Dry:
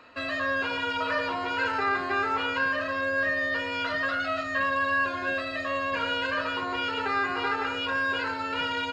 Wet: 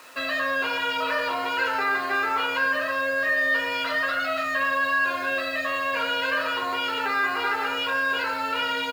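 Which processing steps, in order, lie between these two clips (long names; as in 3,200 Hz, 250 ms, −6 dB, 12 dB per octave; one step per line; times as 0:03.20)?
convolution reverb RT60 0.65 s, pre-delay 8 ms, DRR 8.5 dB
in parallel at −1.5 dB: brickwall limiter −23.5 dBFS, peak gain reduction 8.5 dB
on the sum: mains-hum notches 60/120/180/240/300/360 Hz
bit reduction 8 bits
high-pass filter 120 Hz 12 dB per octave
low-shelf EQ 370 Hz −10 dB
double-tracking delay 17 ms −14 dB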